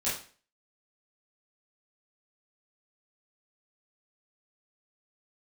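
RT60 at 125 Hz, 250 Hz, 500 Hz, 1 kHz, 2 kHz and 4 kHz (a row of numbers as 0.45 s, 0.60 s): 0.40 s, 0.45 s, 0.40 s, 0.40 s, 0.40 s, 0.40 s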